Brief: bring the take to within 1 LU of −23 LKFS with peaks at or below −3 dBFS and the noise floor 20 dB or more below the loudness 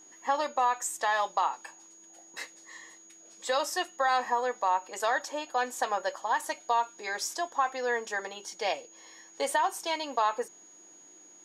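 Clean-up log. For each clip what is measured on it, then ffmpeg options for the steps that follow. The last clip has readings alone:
interfering tone 6,700 Hz; level of the tone −52 dBFS; integrated loudness −30.5 LKFS; sample peak −15.0 dBFS; target loudness −23.0 LKFS
→ -af "bandreject=frequency=6700:width=30"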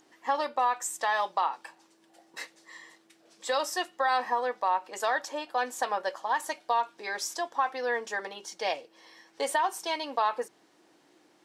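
interfering tone none found; integrated loudness −30.5 LKFS; sample peak −15.0 dBFS; target loudness −23.0 LKFS
→ -af "volume=7.5dB"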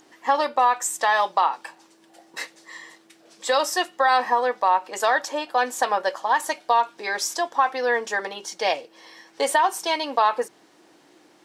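integrated loudness −23.0 LKFS; sample peak −7.5 dBFS; background noise floor −56 dBFS

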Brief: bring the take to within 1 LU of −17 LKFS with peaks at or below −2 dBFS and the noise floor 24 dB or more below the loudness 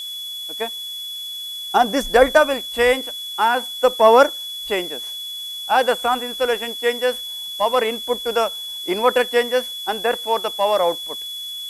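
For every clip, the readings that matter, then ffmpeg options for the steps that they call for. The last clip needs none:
interfering tone 3,400 Hz; level of the tone −28 dBFS; background noise floor −31 dBFS; target noise floor −44 dBFS; integrated loudness −20.0 LKFS; sample peak −1.5 dBFS; target loudness −17.0 LKFS
→ -af "bandreject=frequency=3400:width=30"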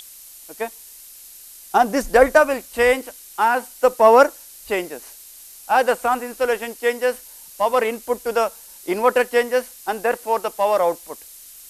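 interfering tone none found; background noise floor −43 dBFS; target noise floor −44 dBFS
→ -af "afftdn=noise_reduction=6:noise_floor=-43"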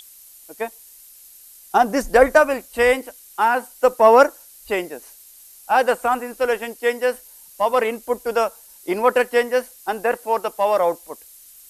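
background noise floor −46 dBFS; integrated loudness −19.5 LKFS; sample peak −1.5 dBFS; target loudness −17.0 LKFS
→ -af "volume=2.5dB,alimiter=limit=-2dB:level=0:latency=1"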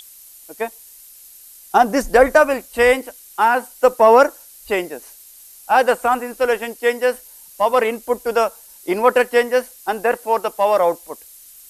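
integrated loudness −17.5 LKFS; sample peak −2.0 dBFS; background noise floor −44 dBFS

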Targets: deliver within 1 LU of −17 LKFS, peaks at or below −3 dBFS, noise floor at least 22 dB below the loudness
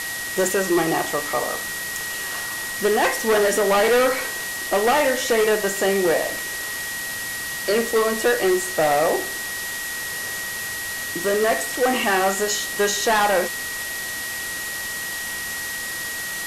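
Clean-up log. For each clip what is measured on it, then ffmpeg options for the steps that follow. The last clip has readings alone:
interfering tone 1,900 Hz; level of the tone −29 dBFS; background noise floor −29 dBFS; target noise floor −44 dBFS; integrated loudness −21.5 LKFS; sample peak −9.5 dBFS; target loudness −17.0 LKFS
→ -af "bandreject=frequency=1900:width=30"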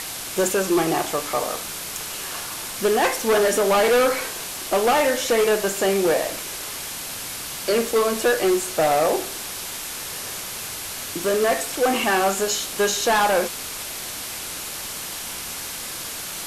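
interfering tone none found; background noise floor −32 dBFS; target noise floor −45 dBFS
→ -af "afftdn=noise_reduction=13:noise_floor=-32"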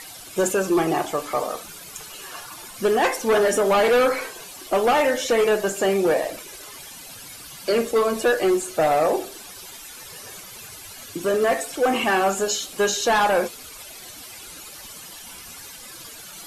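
background noise floor −41 dBFS; target noise floor −44 dBFS
→ -af "afftdn=noise_reduction=6:noise_floor=-41"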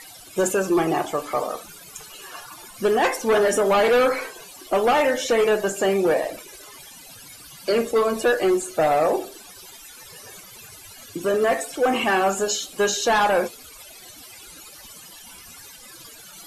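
background noise floor −44 dBFS; integrated loudness −21.5 LKFS; sample peak −11.0 dBFS; target loudness −17.0 LKFS
→ -af "volume=4.5dB"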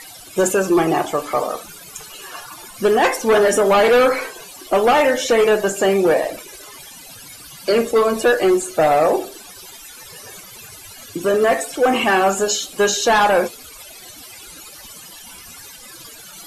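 integrated loudness −17.0 LKFS; sample peak −6.5 dBFS; background noise floor −40 dBFS

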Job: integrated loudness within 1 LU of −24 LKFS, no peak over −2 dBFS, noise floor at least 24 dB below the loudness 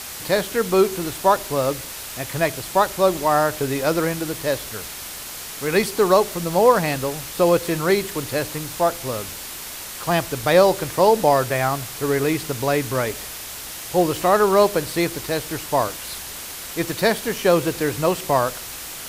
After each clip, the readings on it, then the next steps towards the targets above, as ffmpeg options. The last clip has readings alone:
background noise floor −34 dBFS; target noise floor −45 dBFS; integrated loudness −21.0 LKFS; sample peak −2.5 dBFS; target loudness −24.0 LKFS
→ -af "afftdn=noise_reduction=11:noise_floor=-34"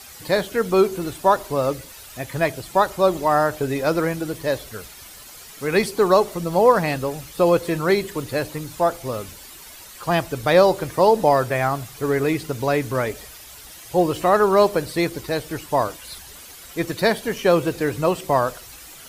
background noise floor −42 dBFS; target noise floor −45 dBFS
→ -af "afftdn=noise_reduction=6:noise_floor=-42"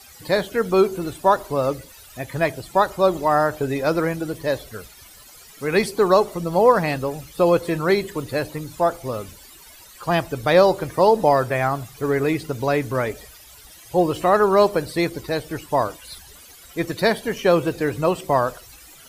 background noise floor −46 dBFS; integrated loudness −21.0 LKFS; sample peak −2.5 dBFS; target loudness −24.0 LKFS
→ -af "volume=-3dB"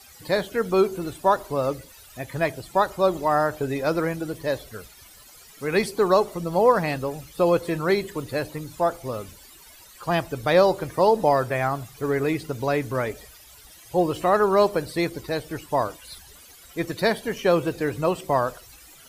integrated loudness −24.0 LKFS; sample peak −5.5 dBFS; background noise floor −49 dBFS

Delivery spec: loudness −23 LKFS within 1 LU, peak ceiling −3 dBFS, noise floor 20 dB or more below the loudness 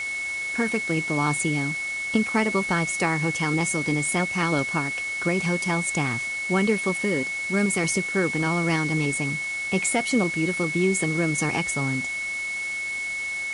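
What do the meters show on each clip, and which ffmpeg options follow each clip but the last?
interfering tone 2,200 Hz; level of the tone −27 dBFS; background noise floor −30 dBFS; target noise floor −44 dBFS; integrated loudness −24.0 LKFS; sample peak −8.5 dBFS; target loudness −23.0 LKFS
→ -af "bandreject=frequency=2200:width=30"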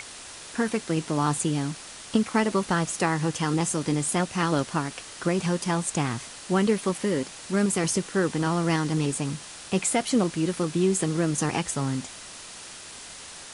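interfering tone none found; background noise floor −43 dBFS; target noise floor −46 dBFS
→ -af "afftdn=noise_reduction=6:noise_floor=-43"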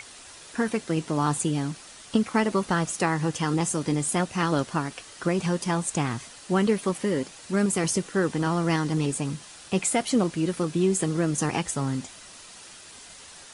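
background noise floor −47 dBFS; integrated loudness −26.5 LKFS; sample peak −9.5 dBFS; target loudness −23.0 LKFS
→ -af "volume=3.5dB"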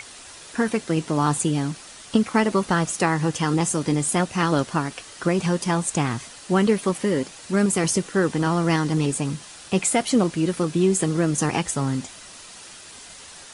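integrated loudness −23.0 LKFS; sample peak −6.0 dBFS; background noise floor −43 dBFS

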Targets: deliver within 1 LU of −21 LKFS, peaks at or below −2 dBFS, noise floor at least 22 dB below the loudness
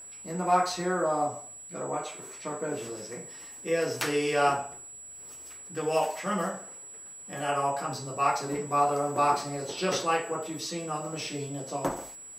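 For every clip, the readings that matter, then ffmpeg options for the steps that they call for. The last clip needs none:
interfering tone 7,800 Hz; level of the tone −43 dBFS; integrated loudness −30.0 LKFS; sample peak −12.0 dBFS; target loudness −21.0 LKFS
→ -af "bandreject=frequency=7800:width=30"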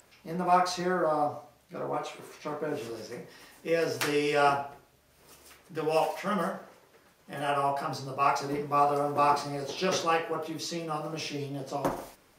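interfering tone none found; integrated loudness −29.5 LKFS; sample peak −12.0 dBFS; target loudness −21.0 LKFS
→ -af "volume=8.5dB"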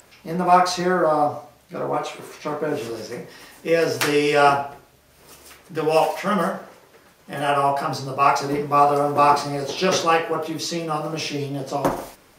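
integrated loudness −21.0 LKFS; sample peak −3.5 dBFS; background noise floor −54 dBFS

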